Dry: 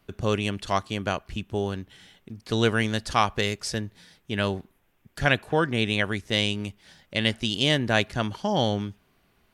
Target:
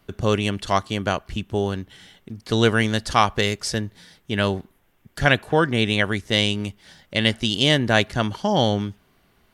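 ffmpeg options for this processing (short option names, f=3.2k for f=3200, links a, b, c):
-af "bandreject=f=2.5k:w=18,volume=4.5dB"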